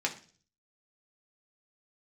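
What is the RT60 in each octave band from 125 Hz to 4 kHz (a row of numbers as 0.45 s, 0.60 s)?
0.75 s, 0.55 s, 0.45 s, 0.35 s, 0.40 s, 0.50 s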